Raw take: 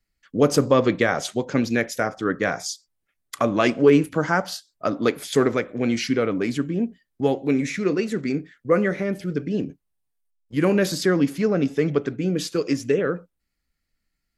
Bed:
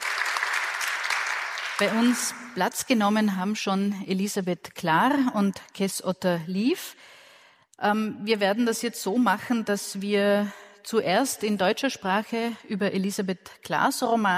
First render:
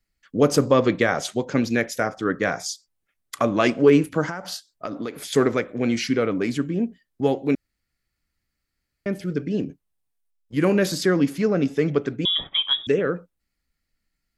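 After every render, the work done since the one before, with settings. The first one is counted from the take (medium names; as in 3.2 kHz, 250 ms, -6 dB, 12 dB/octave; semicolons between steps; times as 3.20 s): 4.29–5.17 s: compression 16:1, threshold -25 dBFS; 7.55–9.06 s: room tone; 12.25–12.87 s: frequency inversion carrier 3.6 kHz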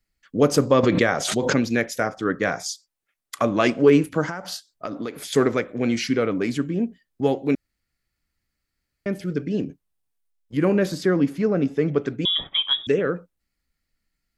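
0.83–1.58 s: swell ahead of each attack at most 49 dB/s; 2.63–3.42 s: bass shelf 250 Hz -11.5 dB; 10.57–11.98 s: treble shelf 2.5 kHz -9 dB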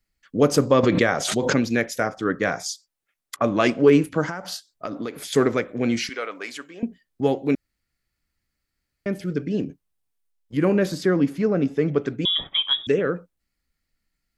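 3.36–4.26 s: level-controlled noise filter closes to 770 Hz, open at -15.5 dBFS; 6.09–6.83 s: high-pass 800 Hz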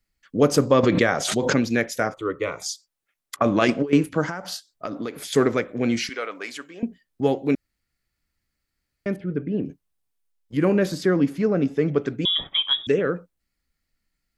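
2.14–2.62 s: static phaser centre 1.1 kHz, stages 8; 3.36–3.93 s: compressor with a negative ratio -19 dBFS, ratio -0.5; 9.16–9.65 s: distance through air 500 m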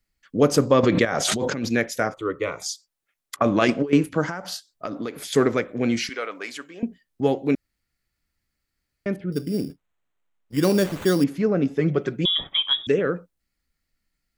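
1.05–1.69 s: compressor with a negative ratio -25 dBFS; 9.32–11.24 s: sample-rate reducer 5.1 kHz; 11.79–12.27 s: comb 5.5 ms, depth 56%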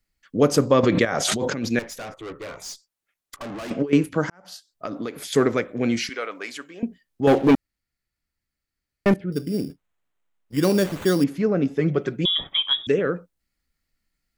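1.79–3.71 s: valve stage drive 32 dB, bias 0.35; 4.30–4.88 s: fade in; 7.27–9.14 s: waveshaping leveller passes 3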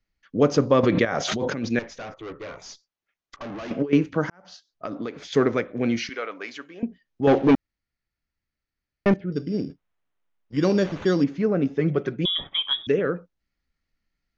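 elliptic low-pass 6.4 kHz, stop band 40 dB; treble shelf 3.9 kHz -7 dB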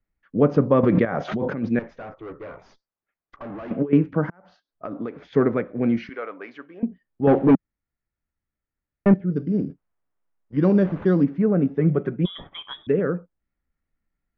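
low-pass 1.6 kHz 12 dB/octave; dynamic bell 180 Hz, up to +6 dB, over -36 dBFS, Q 1.7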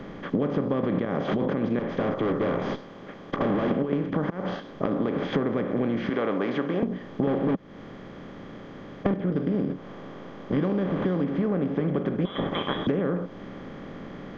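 spectral levelling over time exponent 0.4; compression 10:1, threshold -22 dBFS, peak gain reduction 15 dB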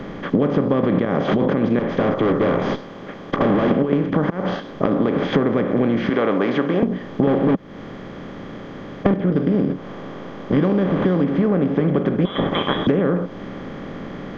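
trim +7.5 dB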